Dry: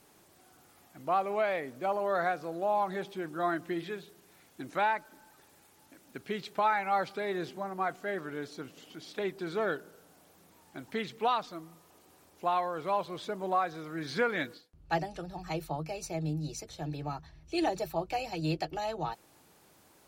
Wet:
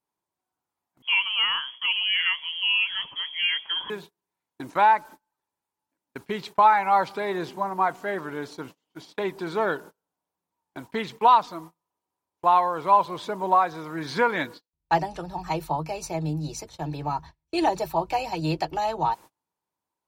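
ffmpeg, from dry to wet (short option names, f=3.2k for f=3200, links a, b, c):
-filter_complex "[0:a]asettb=1/sr,asplit=3[a][b][c];[a]atrim=end=1.024[d];[b]atrim=start=1.02:end=3.9,asetpts=PTS-STARTPTS,afade=t=in:d=0.004:c=qsin,afade=t=out:st=2.876:d=0.004:c=qsin,lowpass=f=3k:t=q:w=0.5098,lowpass=f=3k:t=q:w=0.6013,lowpass=f=3k:t=q:w=0.9,lowpass=f=3k:t=q:w=2.563,afreqshift=-3500[e];[c]atrim=start=3.896[f];[d][e]acrossfade=d=0.004:c1=hsin:c2=qsin[g];[g][f]acrossfade=d=0.004:c1=qsin:c2=hsin,equalizer=f=960:t=o:w=0.32:g=13,agate=range=-33dB:threshold=-46dB:ratio=16:detection=peak,volume=5dB"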